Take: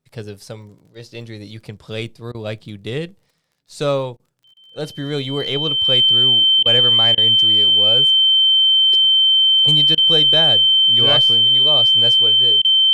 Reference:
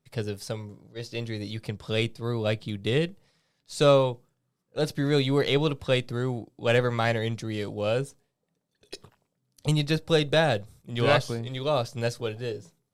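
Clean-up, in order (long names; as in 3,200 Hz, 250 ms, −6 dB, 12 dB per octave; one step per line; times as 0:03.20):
click removal
notch filter 3,100 Hz, Q 30
repair the gap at 0:02.32/0:04.17/0:04.54/0:06.63/0:07.15/0:09.95/0:12.62, 25 ms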